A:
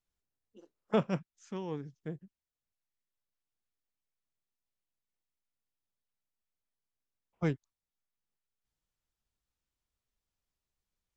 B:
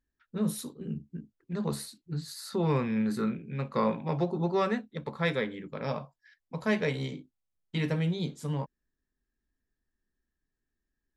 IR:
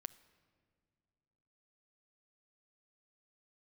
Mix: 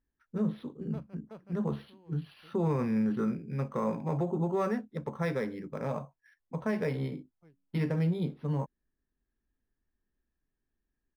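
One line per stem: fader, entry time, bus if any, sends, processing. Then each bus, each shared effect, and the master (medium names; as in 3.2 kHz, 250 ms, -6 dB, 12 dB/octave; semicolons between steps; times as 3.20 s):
-7.0 dB, 0.00 s, no send, echo send -13 dB, de-hum 92.3 Hz, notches 3; auto duck -23 dB, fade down 1.95 s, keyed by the second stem
+1.0 dB, 0.00 s, no send, no echo send, low-pass 1.8 kHz 6 dB/octave; peak limiter -22.5 dBFS, peak gain reduction 6.5 dB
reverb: none
echo: delay 372 ms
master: low-pass 4.7 kHz 12 dB/octave; decimation joined by straight lines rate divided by 6×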